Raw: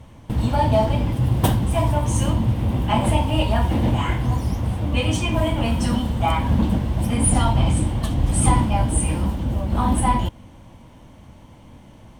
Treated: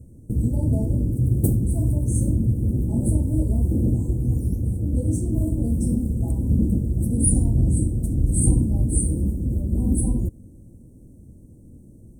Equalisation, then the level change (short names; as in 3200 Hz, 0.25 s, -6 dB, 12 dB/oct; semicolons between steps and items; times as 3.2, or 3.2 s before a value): elliptic band-stop 410–8400 Hz, stop band 70 dB; 0.0 dB